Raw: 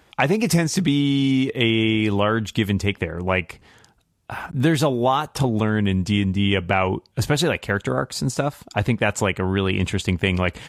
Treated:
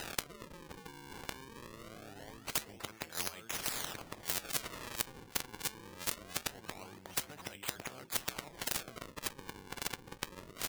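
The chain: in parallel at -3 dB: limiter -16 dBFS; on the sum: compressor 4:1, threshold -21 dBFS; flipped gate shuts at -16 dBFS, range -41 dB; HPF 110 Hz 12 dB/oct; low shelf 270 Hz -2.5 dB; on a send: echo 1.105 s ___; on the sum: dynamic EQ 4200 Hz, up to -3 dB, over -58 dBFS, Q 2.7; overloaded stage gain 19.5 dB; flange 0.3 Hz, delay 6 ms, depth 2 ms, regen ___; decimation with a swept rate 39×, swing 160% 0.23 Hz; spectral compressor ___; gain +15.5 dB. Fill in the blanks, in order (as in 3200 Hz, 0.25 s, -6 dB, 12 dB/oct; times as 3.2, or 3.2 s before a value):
-7 dB, -73%, 10:1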